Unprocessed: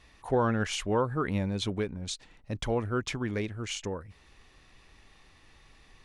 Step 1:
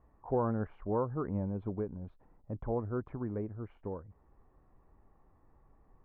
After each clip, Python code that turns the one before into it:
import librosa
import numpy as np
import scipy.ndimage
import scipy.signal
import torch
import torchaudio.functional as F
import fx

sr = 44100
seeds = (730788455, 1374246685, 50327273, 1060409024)

y = scipy.signal.sosfilt(scipy.signal.butter(4, 1100.0, 'lowpass', fs=sr, output='sos'), x)
y = y * librosa.db_to_amplitude(-4.5)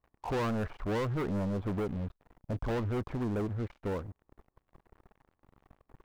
y = fx.leveller(x, sr, passes=5)
y = y * librosa.db_to_amplitude(-8.0)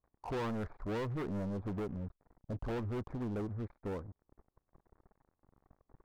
y = fx.wiener(x, sr, points=15)
y = fx.doppler_dist(y, sr, depth_ms=0.41)
y = y * librosa.db_to_amplitude(-5.0)